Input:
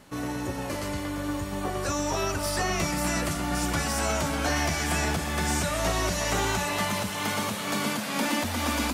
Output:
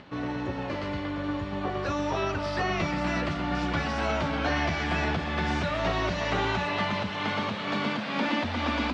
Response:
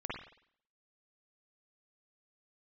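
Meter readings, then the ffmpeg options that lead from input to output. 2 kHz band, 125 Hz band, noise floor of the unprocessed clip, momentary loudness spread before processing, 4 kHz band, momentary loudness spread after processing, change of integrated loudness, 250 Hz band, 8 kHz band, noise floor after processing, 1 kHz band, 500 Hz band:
0.0 dB, -1.0 dB, -33 dBFS, 6 LU, -2.5 dB, 5 LU, -1.0 dB, 0.0 dB, -18.5 dB, -34 dBFS, 0.0 dB, 0.0 dB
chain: -af "highpass=59,acompressor=mode=upward:threshold=0.00631:ratio=2.5,lowpass=f=4000:w=0.5412,lowpass=f=4000:w=1.3066"

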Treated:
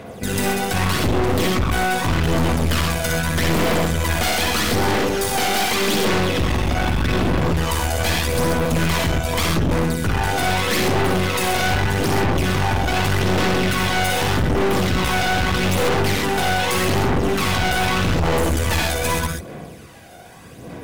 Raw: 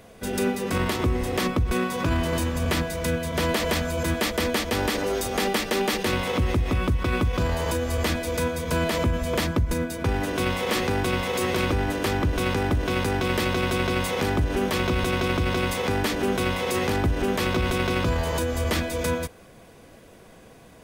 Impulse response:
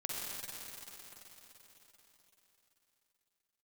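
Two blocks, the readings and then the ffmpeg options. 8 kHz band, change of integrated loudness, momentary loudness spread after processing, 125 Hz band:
+8.0 dB, +5.5 dB, 2 LU, +5.5 dB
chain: -filter_complex "[0:a]aphaser=in_gain=1:out_gain=1:delay=1.4:decay=0.7:speed=0.82:type=sinusoidal,alimiter=limit=0.376:level=0:latency=1:release=440,highpass=79[s0];[1:a]atrim=start_sample=2205,atrim=end_sample=6174[s1];[s0][s1]afir=irnorm=-1:irlink=0,aeval=exprs='0.447*(cos(1*acos(clip(val(0)/0.447,-1,1)))-cos(1*PI/2))+0.224*(cos(5*acos(clip(val(0)/0.447,-1,1)))-cos(5*PI/2))+0.158*(cos(8*acos(clip(val(0)/0.447,-1,1)))-cos(8*PI/2))':c=same,asoftclip=type=hard:threshold=0.355,volume=0.631"

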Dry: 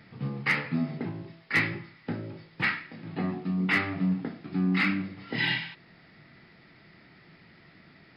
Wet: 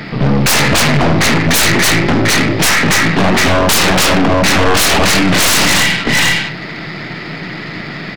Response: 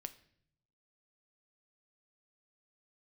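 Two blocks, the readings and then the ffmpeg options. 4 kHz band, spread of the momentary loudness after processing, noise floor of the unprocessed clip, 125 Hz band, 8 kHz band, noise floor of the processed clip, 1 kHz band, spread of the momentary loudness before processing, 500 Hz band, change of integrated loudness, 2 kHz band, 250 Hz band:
+25.5 dB, 15 LU, -57 dBFS, +18.0 dB, no reading, -26 dBFS, +24.0 dB, 12 LU, +26.0 dB, +19.0 dB, +17.5 dB, +16.0 dB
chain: -filter_complex "[0:a]highpass=130,aecho=1:1:82|285|746:0.299|0.668|0.501,asplit=2[s0][s1];[1:a]atrim=start_sample=2205[s2];[s1][s2]afir=irnorm=-1:irlink=0,volume=2.11[s3];[s0][s3]amix=inputs=2:normalize=0,aeval=exprs='0.501*sin(PI/2*7.08*val(0)/0.501)':c=same,aeval=exprs='(tanh(3.98*val(0)+0.65)-tanh(0.65))/3.98':c=same,volume=1.5"

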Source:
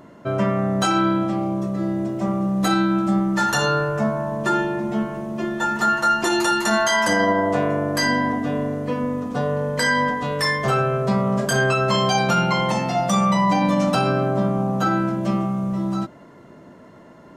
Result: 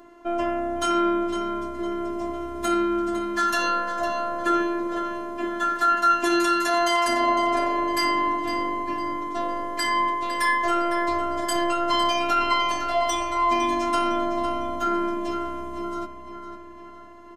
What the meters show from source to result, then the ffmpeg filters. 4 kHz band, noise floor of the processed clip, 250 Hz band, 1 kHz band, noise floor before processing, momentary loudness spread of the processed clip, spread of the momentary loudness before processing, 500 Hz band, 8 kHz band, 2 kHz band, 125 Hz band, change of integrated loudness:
-2.5 dB, -42 dBFS, -6.0 dB, 0.0 dB, -45 dBFS, 9 LU, 6 LU, -4.0 dB, -5.0 dB, -4.5 dB, -23.0 dB, -3.0 dB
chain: -filter_complex "[0:a]afftfilt=real='hypot(re,im)*cos(PI*b)':imag='0':win_size=512:overlap=0.75,asplit=2[s0][s1];[s1]adelay=506,lowpass=f=4400:p=1,volume=0.422,asplit=2[s2][s3];[s3]adelay=506,lowpass=f=4400:p=1,volume=0.51,asplit=2[s4][s5];[s5]adelay=506,lowpass=f=4400:p=1,volume=0.51,asplit=2[s6][s7];[s7]adelay=506,lowpass=f=4400:p=1,volume=0.51,asplit=2[s8][s9];[s9]adelay=506,lowpass=f=4400:p=1,volume=0.51,asplit=2[s10][s11];[s11]adelay=506,lowpass=f=4400:p=1,volume=0.51[s12];[s0][s2][s4][s6][s8][s10][s12]amix=inputs=7:normalize=0"

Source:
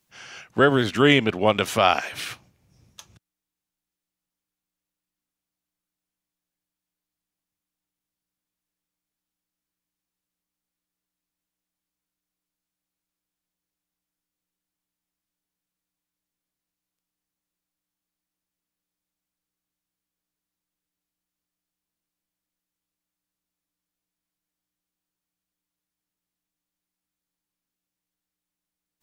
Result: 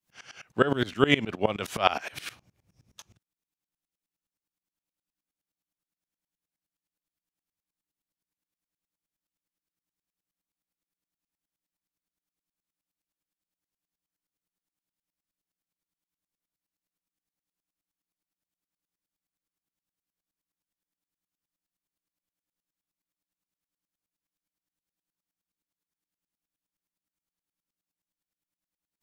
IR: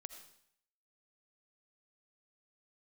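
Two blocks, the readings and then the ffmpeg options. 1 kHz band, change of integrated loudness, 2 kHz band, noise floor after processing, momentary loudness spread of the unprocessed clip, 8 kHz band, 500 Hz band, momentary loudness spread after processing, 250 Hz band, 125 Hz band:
-6.0 dB, -6.5 dB, -6.5 dB, under -85 dBFS, 15 LU, -7.5 dB, -6.5 dB, 15 LU, -6.0 dB, -6.5 dB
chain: -af "aeval=exprs='val(0)*pow(10,-22*if(lt(mod(-9.6*n/s,1),2*abs(-9.6)/1000),1-mod(-9.6*n/s,1)/(2*abs(-9.6)/1000),(mod(-9.6*n/s,1)-2*abs(-9.6)/1000)/(1-2*abs(-9.6)/1000))/20)':c=same,volume=1.12"

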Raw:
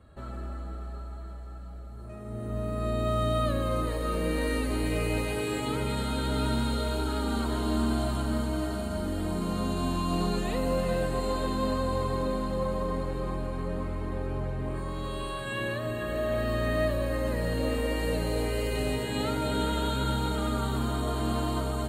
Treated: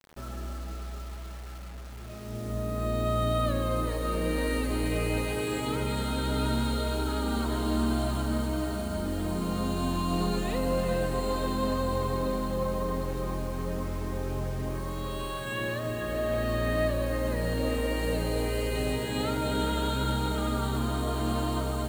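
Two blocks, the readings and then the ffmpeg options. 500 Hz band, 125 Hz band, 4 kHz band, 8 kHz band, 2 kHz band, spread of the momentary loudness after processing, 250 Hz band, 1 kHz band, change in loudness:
0.0 dB, 0.0 dB, 0.0 dB, +1.0 dB, 0.0 dB, 9 LU, 0.0 dB, 0.0 dB, 0.0 dB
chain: -af "acrusher=bits=7:mix=0:aa=0.000001"

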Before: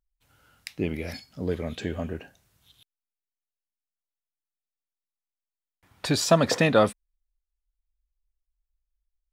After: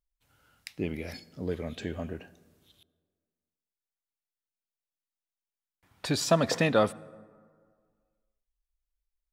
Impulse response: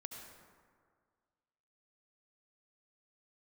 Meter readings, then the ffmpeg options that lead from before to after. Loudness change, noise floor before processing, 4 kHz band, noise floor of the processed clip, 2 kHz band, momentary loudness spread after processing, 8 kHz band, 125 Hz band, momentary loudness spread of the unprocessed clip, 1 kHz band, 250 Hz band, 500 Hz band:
-4.0 dB, under -85 dBFS, -4.0 dB, under -85 dBFS, -4.0 dB, 19 LU, -4.0 dB, -4.0 dB, 17 LU, -4.0 dB, -4.0 dB, -4.0 dB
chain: -filter_complex "[0:a]asplit=2[s0][s1];[s1]highpass=120[s2];[1:a]atrim=start_sample=2205,lowshelf=f=200:g=8[s3];[s2][s3]afir=irnorm=-1:irlink=0,volume=0.178[s4];[s0][s4]amix=inputs=2:normalize=0,volume=0.562"

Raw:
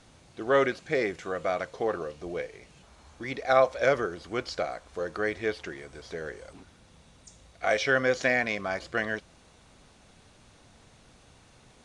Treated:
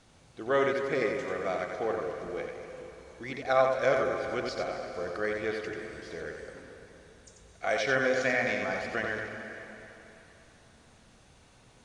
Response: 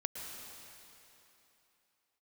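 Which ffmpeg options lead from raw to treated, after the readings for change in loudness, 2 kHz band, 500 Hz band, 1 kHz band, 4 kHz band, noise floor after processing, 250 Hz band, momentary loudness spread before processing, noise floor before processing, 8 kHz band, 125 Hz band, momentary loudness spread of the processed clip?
-2.0 dB, -2.0 dB, -1.5 dB, -1.5 dB, -2.5 dB, -59 dBFS, -1.5 dB, 15 LU, -58 dBFS, -2.0 dB, -2.0 dB, 18 LU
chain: -filter_complex "[0:a]asplit=2[s0][s1];[s1]equalizer=f=4000:t=o:w=0.77:g=-3[s2];[1:a]atrim=start_sample=2205,adelay=90[s3];[s2][s3]afir=irnorm=-1:irlink=0,volume=0.75[s4];[s0][s4]amix=inputs=2:normalize=0,volume=0.631"

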